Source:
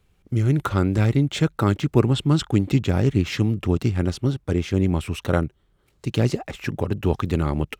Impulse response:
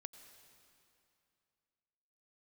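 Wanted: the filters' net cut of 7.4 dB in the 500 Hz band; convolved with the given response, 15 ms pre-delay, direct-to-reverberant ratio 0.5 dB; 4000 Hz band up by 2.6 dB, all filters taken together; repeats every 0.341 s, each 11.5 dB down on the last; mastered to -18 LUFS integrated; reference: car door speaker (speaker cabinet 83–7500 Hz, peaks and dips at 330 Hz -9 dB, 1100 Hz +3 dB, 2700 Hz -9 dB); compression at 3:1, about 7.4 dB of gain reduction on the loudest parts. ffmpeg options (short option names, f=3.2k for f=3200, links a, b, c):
-filter_complex "[0:a]equalizer=f=500:t=o:g=-6.5,equalizer=f=4k:t=o:g=6,acompressor=threshold=-24dB:ratio=3,aecho=1:1:341|682|1023:0.266|0.0718|0.0194,asplit=2[a][b];[1:a]atrim=start_sample=2205,adelay=15[c];[b][c]afir=irnorm=-1:irlink=0,volume=5dB[d];[a][d]amix=inputs=2:normalize=0,highpass=83,equalizer=f=330:t=q:w=4:g=-9,equalizer=f=1.1k:t=q:w=4:g=3,equalizer=f=2.7k:t=q:w=4:g=-9,lowpass=f=7.5k:w=0.5412,lowpass=f=7.5k:w=1.3066,volume=9dB"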